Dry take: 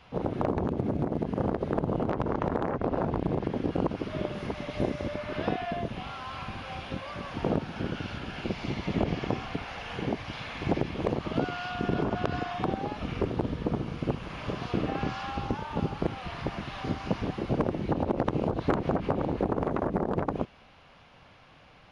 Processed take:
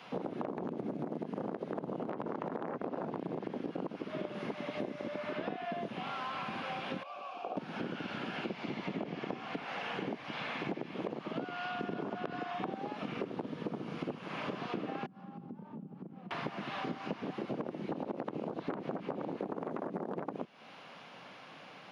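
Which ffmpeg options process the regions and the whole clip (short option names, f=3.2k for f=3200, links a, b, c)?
-filter_complex "[0:a]asettb=1/sr,asplit=3[a][b][c];[a]atrim=end=7.034[d];[b]atrim=start=7.03:end=7.57,asetpts=PTS-STARTPTS,afade=t=in:d=0.004:c=qsin,afade=t=out:st=0.536:d=0.004:c=qsin,asplit=3[e][f][g];[e]bandpass=f=730:t=q:w=8,volume=0dB[h];[f]bandpass=f=1.09k:t=q:w=8,volume=-6dB[i];[g]bandpass=f=2.44k:t=q:w=8,volume=-9dB[j];[h][i][j]amix=inputs=3:normalize=0,bass=f=250:g=-5,treble=f=4k:g=10,bandreject=f=660:w=16[k];[c]atrim=start=7.566[l];[d][k]acrossfade=d=0.004:c1=hsin:c2=qsin[m];[m][l]acrossfade=d=0.004:c1=qsin:c2=hsin,asettb=1/sr,asplit=3[n][o][p];[n]atrim=end=15.064[q];[o]atrim=start=15.06:end=16.31,asetpts=PTS-STARTPTS,afade=t=in:d=0.004:c=qsin,afade=t=out:st=1.246:d=0.004:c=qsin,bandpass=f=190:t=q:w=2.3,acompressor=threshold=-44dB:ratio=10:attack=3.2:release=140:knee=1:detection=peak[r];[p]atrim=start=16.306[s];[q][r]acrossfade=d=0.004:c1=hsin:c2=qsin[t];[t][s]acrossfade=d=0.004:c1=qsin:c2=hsin,acrossover=split=3700[u][v];[v]acompressor=threshold=-60dB:ratio=4:attack=1:release=60[w];[u][w]amix=inputs=2:normalize=0,highpass=f=170:w=0.5412,highpass=f=170:w=1.3066,acompressor=threshold=-40dB:ratio=6,volume=4.5dB"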